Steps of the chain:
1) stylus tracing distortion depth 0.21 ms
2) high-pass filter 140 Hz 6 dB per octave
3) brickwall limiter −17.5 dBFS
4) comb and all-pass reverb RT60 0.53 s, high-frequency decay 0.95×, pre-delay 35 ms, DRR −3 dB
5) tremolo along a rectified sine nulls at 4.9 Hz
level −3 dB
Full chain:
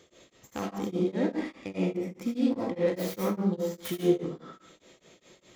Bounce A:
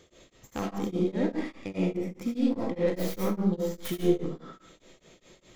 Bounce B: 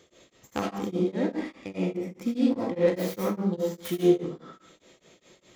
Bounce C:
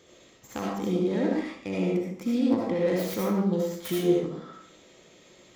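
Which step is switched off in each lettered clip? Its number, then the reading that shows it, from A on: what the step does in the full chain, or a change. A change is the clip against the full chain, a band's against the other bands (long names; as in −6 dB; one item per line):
2, 125 Hz band +2.0 dB
3, change in momentary loudness spread +1 LU
5, change in crest factor −2.5 dB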